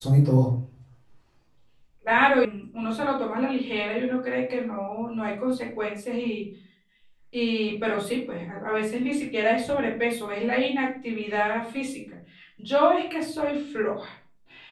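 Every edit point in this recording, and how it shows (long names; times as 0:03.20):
0:02.45: cut off before it has died away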